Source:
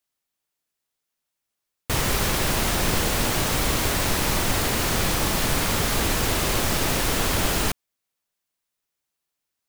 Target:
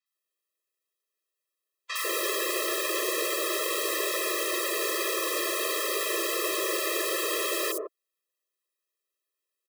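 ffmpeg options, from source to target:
-filter_complex "[0:a]acrossover=split=950|5900[a][b][c];[c]adelay=60[d];[a]adelay=150[e];[e][b][d]amix=inputs=3:normalize=0,afftfilt=real='re*eq(mod(floor(b*sr/1024/340),2),1)':imag='im*eq(mod(floor(b*sr/1024/340),2),1)':win_size=1024:overlap=0.75"

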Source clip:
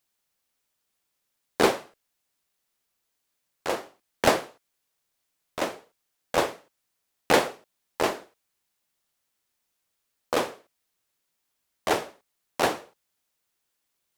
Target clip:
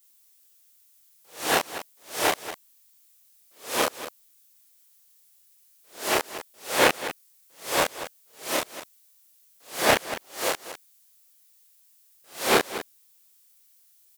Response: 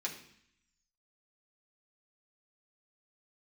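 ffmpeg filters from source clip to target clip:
-filter_complex "[0:a]areverse,acrossover=split=3000[a][b];[b]acompressor=threshold=-41dB:ratio=4:attack=1:release=60[c];[a][c]amix=inputs=2:normalize=0,crystalizer=i=7:c=0,asplit=2[d][e];[e]aecho=0:1:29.15|233.2:0.891|0.282[f];[d][f]amix=inputs=2:normalize=0,volume=-4.5dB"

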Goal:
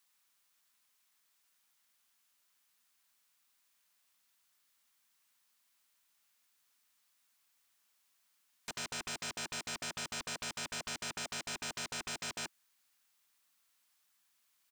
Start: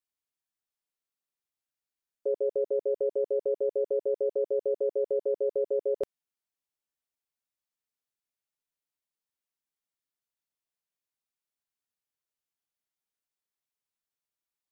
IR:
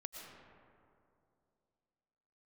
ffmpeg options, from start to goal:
-af "areverse,firequalizer=gain_entry='entry(150,0);entry(220,8);entry(340,0);entry(1100,13)':delay=0.05:min_phase=1,aeval=exprs='0.0112*(abs(mod(val(0)/0.0112+3,4)-2)-1)':c=same,volume=4dB"

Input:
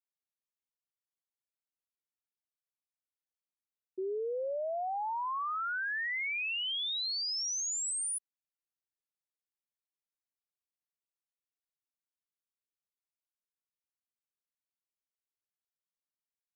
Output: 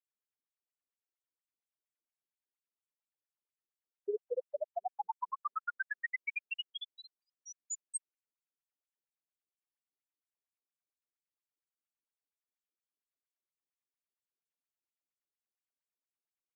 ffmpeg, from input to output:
-af "asuperstop=centerf=4800:order=4:qfactor=0.99,afftfilt=real='re*between(b*sr/1024,280*pow(6400/280,0.5+0.5*sin(2*PI*4.3*pts/sr))/1.41,280*pow(6400/280,0.5+0.5*sin(2*PI*4.3*pts/sr))*1.41)':imag='im*between(b*sr/1024,280*pow(6400/280,0.5+0.5*sin(2*PI*4.3*pts/sr))/1.41,280*pow(6400/280,0.5+0.5*sin(2*PI*4.3*pts/sr))*1.41)':win_size=1024:overlap=0.75,volume=4.5dB"

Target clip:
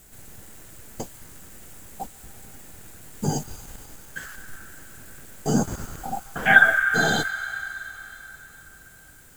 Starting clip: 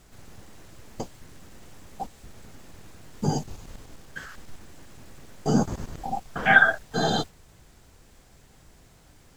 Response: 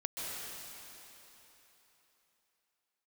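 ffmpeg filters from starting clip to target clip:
-filter_complex "[0:a]aexciter=amount=2.7:drive=7.5:freq=7.2k,asplit=2[a][b];[b]highpass=f=1.4k:t=q:w=4.5[c];[1:a]atrim=start_sample=2205,asetrate=41454,aresample=44100[d];[c][d]afir=irnorm=-1:irlink=0,volume=-15dB[e];[a][e]amix=inputs=2:normalize=0"

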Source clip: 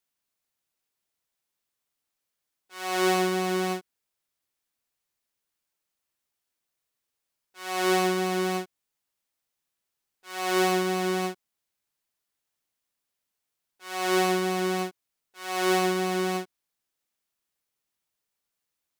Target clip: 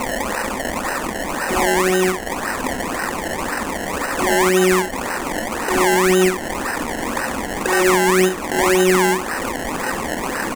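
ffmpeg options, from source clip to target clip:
-filter_complex "[0:a]aeval=exprs='val(0)+0.5*0.0376*sgn(val(0))':c=same,asplit=3[a][b][c];[a]bandpass=f=530:t=q:w=8,volume=0dB[d];[b]bandpass=f=1.84k:t=q:w=8,volume=-6dB[e];[c]bandpass=f=2.48k:t=q:w=8,volume=-9dB[f];[d][e][f]amix=inputs=3:normalize=0,atempo=1.8,acompressor=threshold=-48dB:ratio=5,asplit=2[g][h];[h]aecho=0:1:32.07|69.97:0.251|0.398[i];[g][i]amix=inputs=2:normalize=0,asubboost=boost=7.5:cutoff=230,acrusher=samples=25:mix=1:aa=0.000001:lfo=1:lforange=25:lforate=1.9,equalizer=f=125:t=o:w=1:g=-11,equalizer=f=250:t=o:w=1:g=7,equalizer=f=500:t=o:w=1:g=-5,equalizer=f=1k:t=o:w=1:g=6,equalizer=f=2k:t=o:w=1:g=5,equalizer=f=4k:t=o:w=1:g=-5,equalizer=f=8k:t=o:w=1:g=7,alimiter=level_in=34dB:limit=-1dB:release=50:level=0:latency=1,volume=-4dB"

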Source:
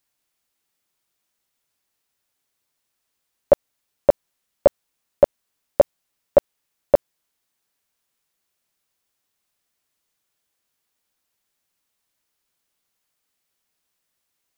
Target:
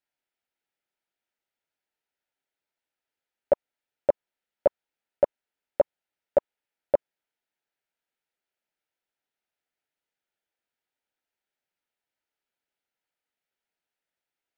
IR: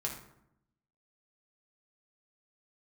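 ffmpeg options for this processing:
-af "asuperstop=centerf=1100:order=4:qfactor=4.7,bass=f=250:g=-8,treble=f=4k:g=-14,volume=-6.5dB"

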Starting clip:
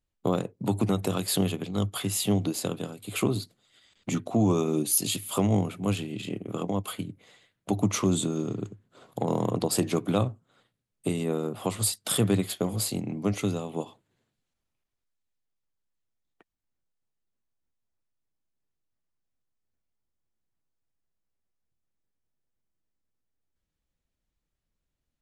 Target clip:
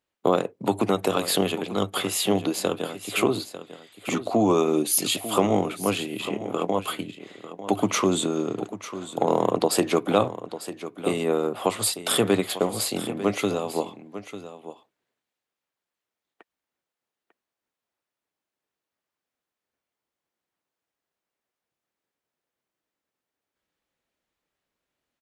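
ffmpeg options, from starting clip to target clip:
-filter_complex "[0:a]highpass=f=170:p=1,bass=f=250:g=-11,treble=f=4k:g=-7,asplit=2[a][b];[b]aecho=0:1:897:0.224[c];[a][c]amix=inputs=2:normalize=0,volume=8.5dB"

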